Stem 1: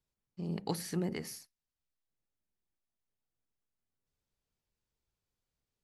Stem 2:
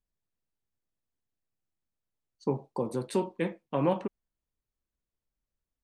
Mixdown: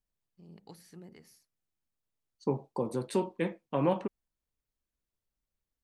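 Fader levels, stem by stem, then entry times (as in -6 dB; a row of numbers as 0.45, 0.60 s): -16.0, -1.0 dB; 0.00, 0.00 s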